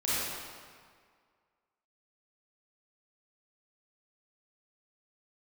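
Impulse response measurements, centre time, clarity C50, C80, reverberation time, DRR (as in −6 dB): 151 ms, −6.0 dB, −2.5 dB, 1.9 s, −10.5 dB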